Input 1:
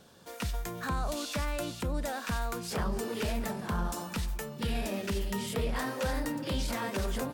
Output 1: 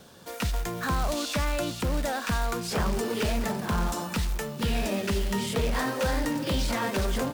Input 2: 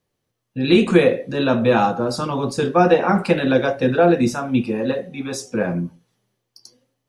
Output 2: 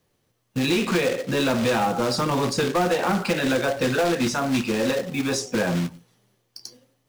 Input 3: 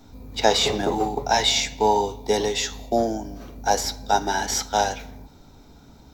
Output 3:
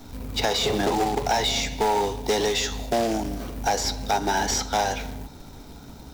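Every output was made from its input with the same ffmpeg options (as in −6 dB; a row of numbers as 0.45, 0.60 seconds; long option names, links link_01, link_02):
-filter_complex "[0:a]acrusher=bits=3:mode=log:mix=0:aa=0.000001,acrossover=split=810|7900[link_01][link_02][link_03];[link_01]acompressor=threshold=-26dB:ratio=4[link_04];[link_02]acompressor=threshold=-29dB:ratio=4[link_05];[link_03]acompressor=threshold=-49dB:ratio=4[link_06];[link_04][link_05][link_06]amix=inputs=3:normalize=0,asoftclip=type=tanh:threshold=-21.5dB,volume=6dB"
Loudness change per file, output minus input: +5.5, −4.5, −2.0 LU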